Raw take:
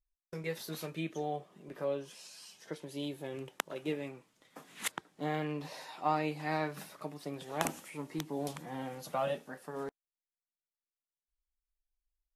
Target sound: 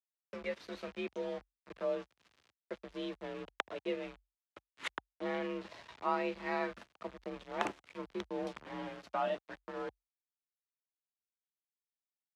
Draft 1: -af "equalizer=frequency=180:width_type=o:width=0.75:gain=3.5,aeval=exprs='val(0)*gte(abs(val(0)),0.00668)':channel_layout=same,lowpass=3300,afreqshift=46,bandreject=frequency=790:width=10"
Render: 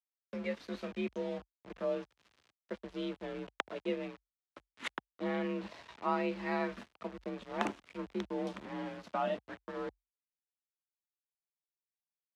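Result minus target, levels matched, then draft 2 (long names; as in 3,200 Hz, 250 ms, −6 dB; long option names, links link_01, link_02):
250 Hz band +3.0 dB
-af "equalizer=frequency=180:width_type=o:width=0.75:gain=-6.5,aeval=exprs='val(0)*gte(abs(val(0)),0.00668)':channel_layout=same,lowpass=3300,afreqshift=46,bandreject=frequency=790:width=10"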